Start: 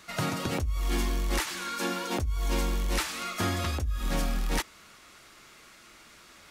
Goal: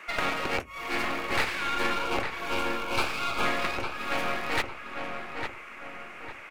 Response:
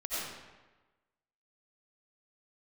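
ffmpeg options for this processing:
-filter_complex "[0:a]highpass=410,highshelf=frequency=3100:width_type=q:width=3:gain=-7.5,acrossover=split=4100[link_01][link_02];[link_01]acontrast=87[link_03];[link_03][link_02]amix=inputs=2:normalize=0,aeval=exprs='clip(val(0),-1,0.0119)':channel_layout=same,asettb=1/sr,asplit=3[link_04][link_05][link_06];[link_04]atrim=end=1.924[link_07];[link_05]atrim=start=1.92:end=3.45,asetpts=PTS-STARTPTS,afade=type=in:duration=0.004:curve=qsin,afade=type=out:start_time=1.526:duration=0.004:curve=qsin,asuperstop=centerf=1900:order=4:qfactor=3.5[link_08];[link_06]atrim=start=3.446[link_09];[link_07][link_08]acrossfade=duration=0.004:curve1=hsin:curve2=qsin[link_10];[link_10][link_09]acrossfade=duration=0.004:curve1=qsin:curve2=hsin,asplit=2[link_11][link_12];[link_12]adelay=854,lowpass=frequency=2500:poles=1,volume=-5dB,asplit=2[link_13][link_14];[link_14]adelay=854,lowpass=frequency=2500:poles=1,volume=0.43,asplit=2[link_15][link_16];[link_16]adelay=854,lowpass=frequency=2500:poles=1,volume=0.43,asplit=2[link_17][link_18];[link_18]adelay=854,lowpass=frequency=2500:poles=1,volume=0.43,asplit=2[link_19][link_20];[link_20]adelay=854,lowpass=frequency=2500:poles=1,volume=0.43[link_21];[link_13][link_15][link_17][link_19][link_21]amix=inputs=5:normalize=0[link_22];[link_11][link_22]amix=inputs=2:normalize=0"

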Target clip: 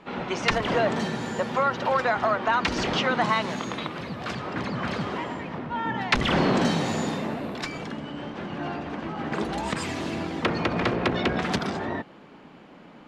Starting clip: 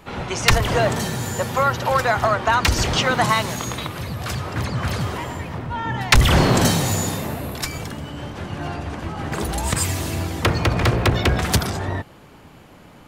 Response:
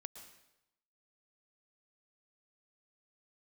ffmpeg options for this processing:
-filter_complex "[0:a]lowpass=3800,lowshelf=frequency=140:width_type=q:width=1.5:gain=-12,asplit=2[link_01][link_02];[link_02]alimiter=limit=-14dB:level=0:latency=1:release=132,volume=1dB[link_03];[link_01][link_03]amix=inputs=2:normalize=0,volume=-9dB"

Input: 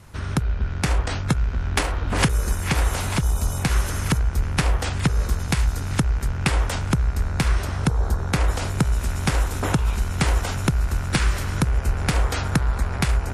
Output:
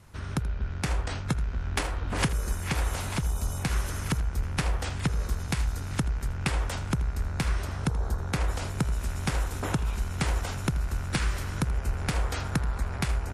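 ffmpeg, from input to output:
ffmpeg -i in.wav -af "aecho=1:1:81:0.15,volume=-7dB" out.wav

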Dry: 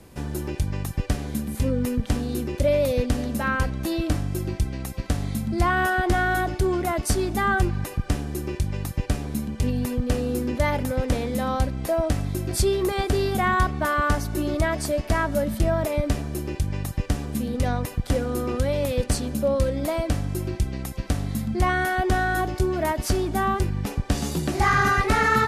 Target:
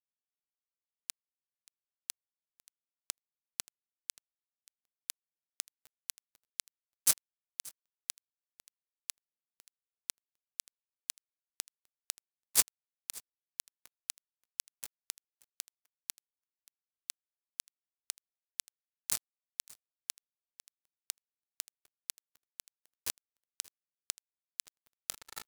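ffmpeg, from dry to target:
ffmpeg -i in.wav -filter_complex "[0:a]highpass=52,asplit=2[link_01][link_02];[link_02]adelay=19,volume=-12dB[link_03];[link_01][link_03]amix=inputs=2:normalize=0,acrossover=split=230|3000[link_04][link_05][link_06];[link_05]acompressor=threshold=-24dB:ratio=8[link_07];[link_04][link_07][link_06]amix=inputs=3:normalize=0,flanger=delay=6.1:depth=6.4:regen=86:speed=1.8:shape=sinusoidal,acrossover=split=370|6100[link_08][link_09][link_10];[link_08]alimiter=level_in=2.5dB:limit=-24dB:level=0:latency=1:release=239,volume=-2.5dB[link_11];[link_11][link_09][link_10]amix=inputs=3:normalize=0,equalizer=frequency=1300:width=3.6:gain=13.5,anlmdn=3.98,aderivative,bandreject=frequency=127.2:width_type=h:width=4,bandreject=frequency=254.4:width_type=h:width=4,bandreject=frequency=381.6:width_type=h:width=4,bandreject=frequency=508.8:width_type=h:width=4,bandreject=frequency=636:width_type=h:width=4,bandreject=frequency=763.2:width_type=h:width=4,bandreject=frequency=890.4:width_type=h:width=4,bandreject=frequency=1017.6:width_type=h:width=4,bandreject=frequency=1144.8:width_type=h:width=4,bandreject=frequency=1272:width_type=h:width=4,bandreject=frequency=1399.2:width_type=h:width=4,bandreject=frequency=1526.4:width_type=h:width=4,bandreject=frequency=1653.6:width_type=h:width=4,acrusher=bits=3:mix=0:aa=0.5,aecho=1:1:580:0.0841,volume=11dB" out.wav

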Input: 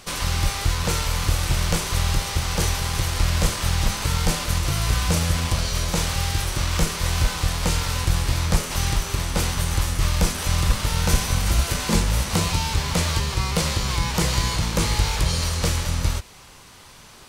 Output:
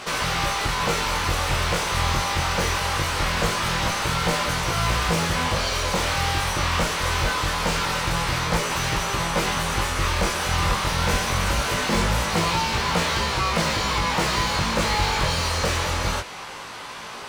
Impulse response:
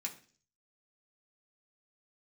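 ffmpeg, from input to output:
-filter_complex "[0:a]asplit=2[link_01][link_02];[link_02]highpass=frequency=720:poles=1,volume=26dB,asoftclip=type=tanh:threshold=-7.5dB[link_03];[link_01][link_03]amix=inputs=2:normalize=0,lowpass=frequency=1600:poles=1,volume=-6dB,flanger=delay=17:depth=5.7:speed=0.23"

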